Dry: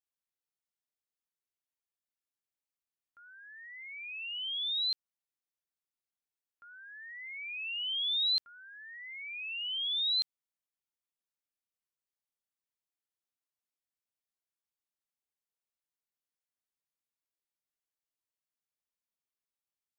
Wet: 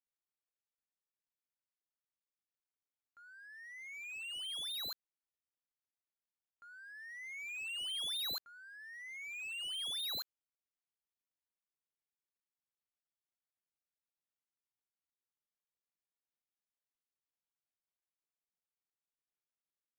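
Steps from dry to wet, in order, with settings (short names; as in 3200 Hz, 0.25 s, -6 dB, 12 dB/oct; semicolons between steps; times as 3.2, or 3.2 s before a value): median filter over 9 samples; gain -2 dB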